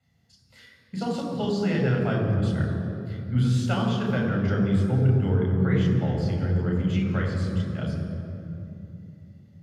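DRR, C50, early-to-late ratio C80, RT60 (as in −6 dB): −1.5 dB, 3.0 dB, 4.0 dB, 2.9 s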